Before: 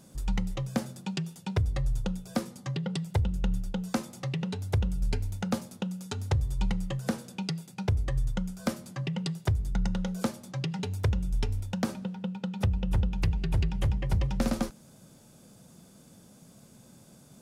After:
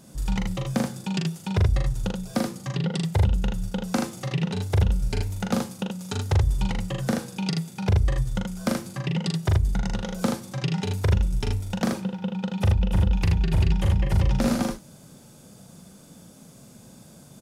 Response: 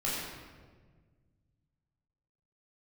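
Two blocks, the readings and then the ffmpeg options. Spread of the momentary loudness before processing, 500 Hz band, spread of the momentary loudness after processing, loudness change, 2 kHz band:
6 LU, +6.0 dB, 7 LU, +6.0 dB, +6.0 dB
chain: -af "aecho=1:1:41|79:0.668|0.631,volume=3.5dB"

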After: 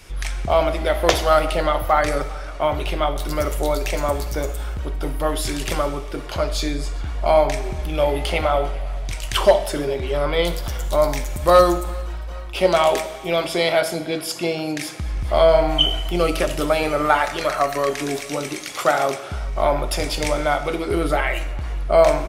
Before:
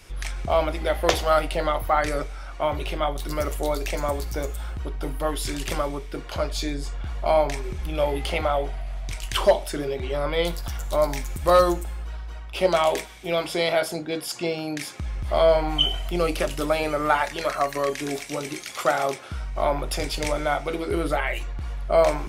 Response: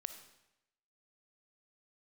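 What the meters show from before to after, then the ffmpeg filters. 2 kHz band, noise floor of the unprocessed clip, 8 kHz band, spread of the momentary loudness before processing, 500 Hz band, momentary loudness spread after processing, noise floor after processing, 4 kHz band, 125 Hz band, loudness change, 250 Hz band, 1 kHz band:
+4.0 dB, -37 dBFS, +4.0 dB, 12 LU, +4.5 dB, 12 LU, -31 dBFS, +4.0 dB, +4.5 dB, +4.0 dB, +4.0 dB, +4.0 dB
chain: -filter_complex "[0:a]aecho=1:1:401|802|1203:0.0668|0.0354|0.0188,asplit=2[a][b];[1:a]atrim=start_sample=2205[c];[b][c]afir=irnorm=-1:irlink=0,volume=9dB[d];[a][d]amix=inputs=2:normalize=0,volume=-5.5dB"

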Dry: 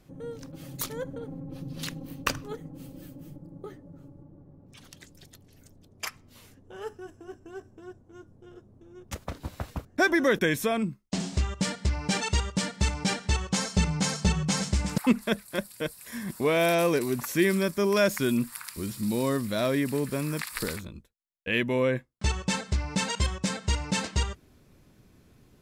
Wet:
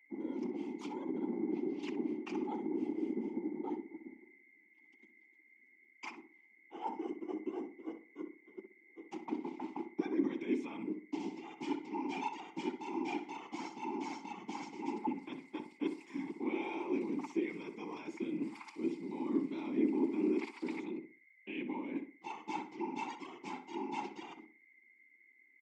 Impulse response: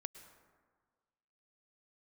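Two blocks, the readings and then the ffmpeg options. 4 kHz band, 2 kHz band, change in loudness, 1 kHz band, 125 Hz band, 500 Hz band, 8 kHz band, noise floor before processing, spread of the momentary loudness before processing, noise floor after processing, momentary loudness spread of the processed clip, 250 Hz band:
-21.0 dB, -17.5 dB, -11.5 dB, -7.5 dB, -25.0 dB, -12.0 dB, under -25 dB, -59 dBFS, 20 LU, -66 dBFS, 13 LU, -6.0 dB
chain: -filter_complex "[0:a]agate=range=-30dB:threshold=-45dB:ratio=16:detection=peak,aecho=1:1:3.7:0.45,dynaudnorm=f=560:g=21:m=5.5dB,alimiter=limit=-15dB:level=0:latency=1:release=111,areverse,acompressor=threshold=-36dB:ratio=10,areverse,aeval=exprs='val(0)+0.00112*sin(2*PI*2100*n/s)':c=same,asplit=3[a][b][c];[a]bandpass=f=300:t=q:w=8,volume=0dB[d];[b]bandpass=f=870:t=q:w=8,volume=-6dB[e];[c]bandpass=f=2.24k:t=q:w=8,volume=-9dB[f];[d][e][f]amix=inputs=3:normalize=0,afftfilt=real='hypot(re,im)*cos(2*PI*random(0))':imag='hypot(re,im)*sin(2*PI*random(1))':win_size=512:overlap=0.75,aexciter=amount=2.2:drive=6.9:freq=3.1k,highpass=f=210:w=0.5412,highpass=f=210:w=1.3066,equalizer=f=320:t=q:w=4:g=5,equalizer=f=880:t=q:w=4:g=7,equalizer=f=1.6k:t=q:w=4:g=7,equalizer=f=4k:t=q:w=4:g=-9,lowpass=f=6.6k:w=0.5412,lowpass=f=6.6k:w=1.3066,asplit=2[g][h];[h]adelay=62,lowpass=f=1.6k:p=1,volume=-8dB,asplit=2[i][j];[j]adelay=62,lowpass=f=1.6k:p=1,volume=0.31,asplit=2[k][l];[l]adelay=62,lowpass=f=1.6k:p=1,volume=0.31,asplit=2[m][n];[n]adelay=62,lowpass=f=1.6k:p=1,volume=0.31[o];[g][i][k][m][o]amix=inputs=5:normalize=0,volume=15dB"

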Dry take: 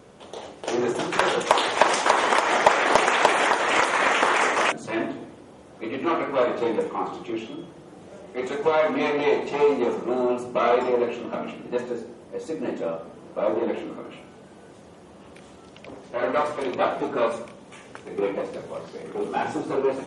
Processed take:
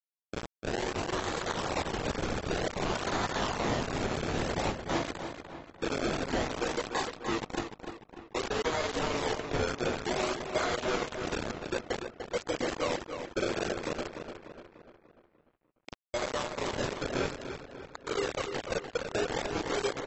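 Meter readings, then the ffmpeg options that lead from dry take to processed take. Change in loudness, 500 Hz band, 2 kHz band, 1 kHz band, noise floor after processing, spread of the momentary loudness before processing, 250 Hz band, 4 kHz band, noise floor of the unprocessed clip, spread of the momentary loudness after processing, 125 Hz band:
-10.0 dB, -9.5 dB, -10.0 dB, -11.5 dB, -72 dBFS, 17 LU, -6.0 dB, -6.0 dB, -47 dBFS, 11 LU, +3.5 dB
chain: -filter_complex "[0:a]highpass=250,aemphasis=mode=production:type=75kf,afftdn=nr=13:nf=-30,equalizer=f=8.3k:w=4.5:g=3.5,asplit=2[a][b];[b]alimiter=limit=-8dB:level=0:latency=1:release=339,volume=-1dB[c];[a][c]amix=inputs=2:normalize=0,acompressor=threshold=-28dB:ratio=12,acrusher=samples=31:mix=1:aa=0.000001:lfo=1:lforange=31:lforate=0.54,asoftclip=type=tanh:threshold=-27dB,flanger=delay=7.7:depth=5.2:regen=85:speed=0.25:shape=triangular,acrusher=bits=5:mix=0:aa=0.000001,asplit=2[d][e];[e]adelay=296,lowpass=f=4k:p=1,volume=-7.5dB,asplit=2[f][g];[g]adelay=296,lowpass=f=4k:p=1,volume=0.51,asplit=2[h][i];[i]adelay=296,lowpass=f=4k:p=1,volume=0.51,asplit=2[j][k];[k]adelay=296,lowpass=f=4k:p=1,volume=0.51,asplit=2[l][m];[m]adelay=296,lowpass=f=4k:p=1,volume=0.51,asplit=2[n][o];[o]adelay=296,lowpass=f=4k:p=1,volume=0.51[p];[d][f][h][j][l][n][p]amix=inputs=7:normalize=0,volume=3dB" -ar 22050 -c:a aac -b:a 24k

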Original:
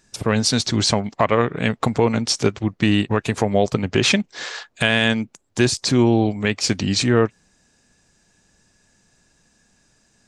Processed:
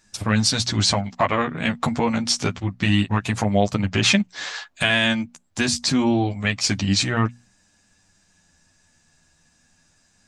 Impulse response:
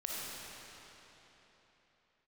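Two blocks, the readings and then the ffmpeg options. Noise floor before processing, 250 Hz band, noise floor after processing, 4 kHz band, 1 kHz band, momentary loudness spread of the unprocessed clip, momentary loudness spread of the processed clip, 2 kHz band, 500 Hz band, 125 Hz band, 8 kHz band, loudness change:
-63 dBFS, -2.0 dB, -62 dBFS, 0.0 dB, -0.5 dB, 5 LU, 6 LU, 0.0 dB, -6.0 dB, -1.0 dB, 0.0 dB, -1.5 dB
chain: -af "equalizer=f=420:t=o:w=0.74:g=-9,bandreject=f=60:t=h:w=6,bandreject=f=120:t=h:w=6,bandreject=f=180:t=h:w=6,bandreject=f=240:t=h:w=6,flanger=delay=9.7:depth=2.9:regen=-1:speed=0.27:shape=sinusoidal,volume=3dB"

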